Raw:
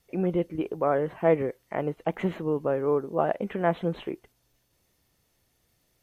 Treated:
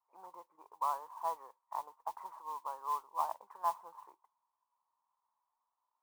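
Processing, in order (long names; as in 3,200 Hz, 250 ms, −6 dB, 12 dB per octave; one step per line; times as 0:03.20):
flat-topped band-pass 990 Hz, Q 4.9
noise that follows the level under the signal 21 dB
level +4.5 dB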